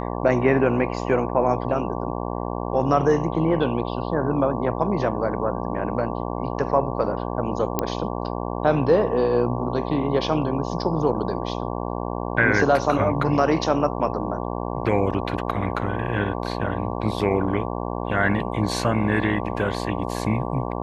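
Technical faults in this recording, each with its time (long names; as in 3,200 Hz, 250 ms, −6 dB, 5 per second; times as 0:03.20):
mains buzz 60 Hz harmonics 19 −28 dBFS
0:07.79: click −7 dBFS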